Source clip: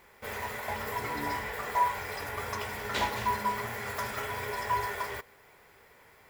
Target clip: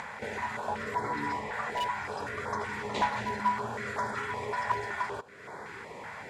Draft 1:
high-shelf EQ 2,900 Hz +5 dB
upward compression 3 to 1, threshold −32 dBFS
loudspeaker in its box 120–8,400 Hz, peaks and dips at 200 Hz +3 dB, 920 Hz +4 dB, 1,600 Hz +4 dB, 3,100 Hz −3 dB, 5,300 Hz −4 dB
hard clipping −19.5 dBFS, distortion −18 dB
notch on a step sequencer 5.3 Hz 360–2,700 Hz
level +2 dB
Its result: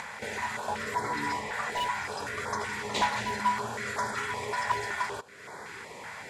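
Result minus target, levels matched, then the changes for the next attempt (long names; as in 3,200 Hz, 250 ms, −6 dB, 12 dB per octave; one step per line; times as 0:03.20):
8,000 Hz band +7.5 dB
change: high-shelf EQ 2,900 Hz −6.5 dB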